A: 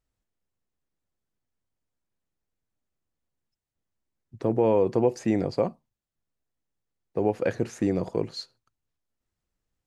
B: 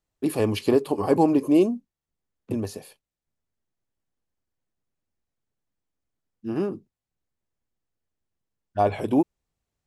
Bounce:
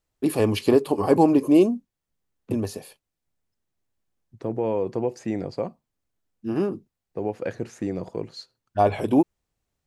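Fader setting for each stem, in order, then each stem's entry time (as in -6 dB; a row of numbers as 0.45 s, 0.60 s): -3.5 dB, +2.0 dB; 0.00 s, 0.00 s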